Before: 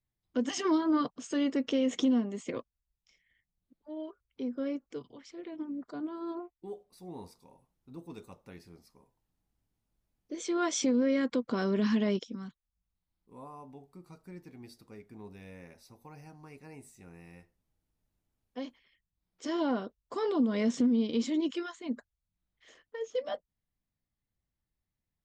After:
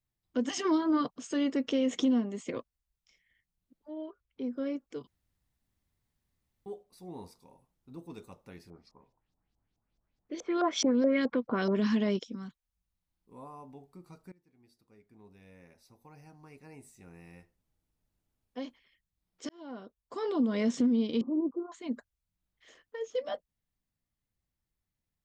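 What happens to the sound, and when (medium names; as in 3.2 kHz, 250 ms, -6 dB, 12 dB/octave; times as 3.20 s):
3.90–4.44 s: distance through air 140 m
5.07–6.66 s: room tone
8.70–11.75 s: LFO low-pass saw up 4.7 Hz 600–6300 Hz
14.32–17.31 s: fade in, from -23 dB
19.49–20.47 s: fade in
21.21–21.72 s: Chebyshev low-pass 1.2 kHz, order 6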